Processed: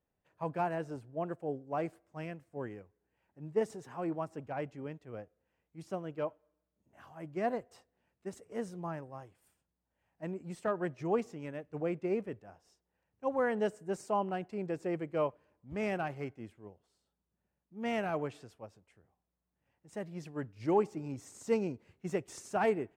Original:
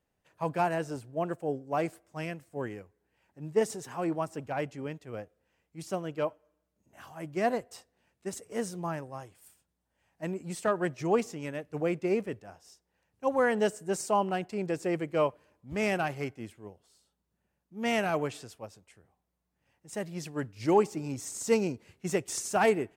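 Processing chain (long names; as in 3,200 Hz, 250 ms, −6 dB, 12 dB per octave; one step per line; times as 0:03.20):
high-shelf EQ 3,300 Hz −12 dB
level −4.5 dB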